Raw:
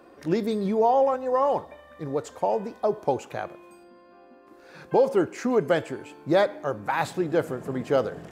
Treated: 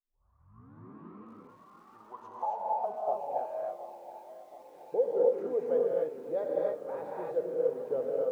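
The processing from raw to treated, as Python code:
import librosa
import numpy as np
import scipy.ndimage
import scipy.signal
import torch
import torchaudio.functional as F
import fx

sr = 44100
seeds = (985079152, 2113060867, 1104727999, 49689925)

y = fx.tape_start_head(x, sr, length_s=2.57)
y = fx.dynamic_eq(y, sr, hz=370.0, q=1.9, threshold_db=-36.0, ratio=4.0, max_db=-6)
y = fx.filter_sweep_bandpass(y, sr, from_hz=1100.0, to_hz=470.0, start_s=1.91, end_s=4.09, q=6.1)
y = y + 10.0 ** (-17.5 / 20.0) * np.pad(y, (int(548 * sr / 1000.0), 0))[:len(y)]
y = fx.rev_gated(y, sr, seeds[0], gate_ms=310, shape='rising', drr_db=-4.0)
y = fx.echo_crushed(y, sr, ms=724, feedback_pct=55, bits=9, wet_db=-14)
y = y * librosa.db_to_amplitude(-2.0)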